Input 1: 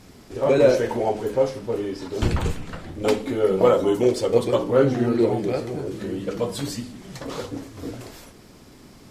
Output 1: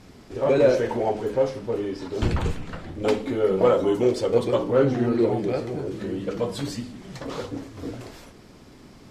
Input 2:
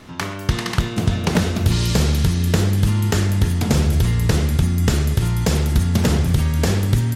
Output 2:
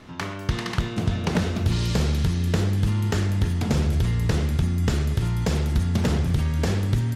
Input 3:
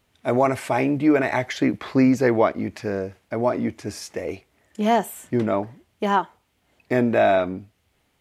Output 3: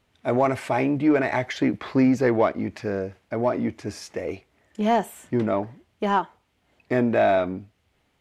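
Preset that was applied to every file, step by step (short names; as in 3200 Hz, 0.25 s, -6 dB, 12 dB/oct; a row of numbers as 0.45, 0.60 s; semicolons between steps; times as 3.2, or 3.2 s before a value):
high shelf 8200 Hz -10.5 dB; in parallel at -9 dB: soft clip -21 dBFS; on the sum: match loudness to -24 LUFS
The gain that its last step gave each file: -3.0, -6.0, -3.0 dB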